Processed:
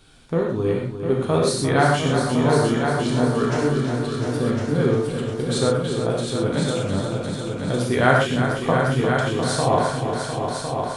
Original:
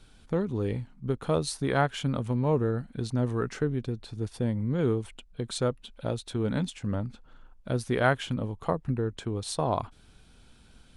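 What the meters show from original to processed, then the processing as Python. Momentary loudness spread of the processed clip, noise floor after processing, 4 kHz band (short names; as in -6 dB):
7 LU, -30 dBFS, +10.0 dB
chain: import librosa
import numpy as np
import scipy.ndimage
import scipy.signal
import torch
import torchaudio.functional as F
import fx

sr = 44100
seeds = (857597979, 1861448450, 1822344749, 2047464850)

y = fx.low_shelf(x, sr, hz=67.0, db=-10.0)
y = fx.wow_flutter(y, sr, seeds[0], rate_hz=2.1, depth_cents=23.0)
y = fx.echo_heads(y, sr, ms=352, heads='all three', feedback_pct=49, wet_db=-9.0)
y = fx.rev_gated(y, sr, seeds[1], gate_ms=150, shape='flat', drr_db=-1.5)
y = y * librosa.db_to_amplitude(4.5)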